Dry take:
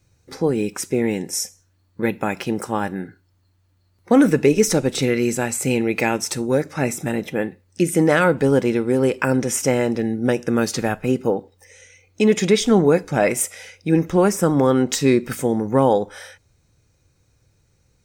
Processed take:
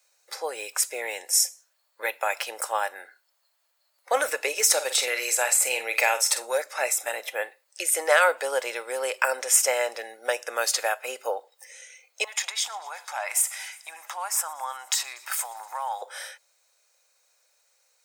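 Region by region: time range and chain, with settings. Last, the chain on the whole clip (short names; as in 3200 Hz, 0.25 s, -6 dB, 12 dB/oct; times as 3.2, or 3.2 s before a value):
4.73–6.58 doubler 48 ms -10 dB + three-band squash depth 40%
12.24–16.02 compressor 12:1, threshold -22 dBFS + resonant low shelf 630 Hz -10.5 dB, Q 3 + thin delay 0.119 s, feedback 77%, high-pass 1700 Hz, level -23 dB
whole clip: Chebyshev high-pass 570 Hz, order 4; high shelf 4500 Hz +9 dB; notch 5900 Hz, Q 15; gain -1 dB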